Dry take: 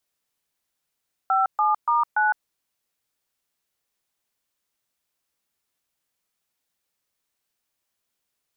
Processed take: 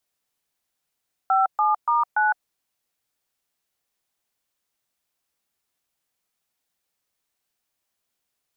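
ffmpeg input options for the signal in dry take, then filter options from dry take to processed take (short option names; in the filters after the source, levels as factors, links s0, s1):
-f lavfi -i "aevalsrc='0.1*clip(min(mod(t,0.288),0.159-mod(t,0.288))/0.002,0,1)*(eq(floor(t/0.288),0)*(sin(2*PI*770*mod(t,0.288))+sin(2*PI*1336*mod(t,0.288)))+eq(floor(t/0.288),1)*(sin(2*PI*852*mod(t,0.288))+sin(2*PI*1209*mod(t,0.288)))+eq(floor(t/0.288),2)*(sin(2*PI*941*mod(t,0.288))+sin(2*PI*1209*mod(t,0.288)))+eq(floor(t/0.288),3)*(sin(2*PI*852*mod(t,0.288))+sin(2*PI*1477*mod(t,0.288))))':d=1.152:s=44100"
-af "equalizer=f=740:w=6.3:g=3"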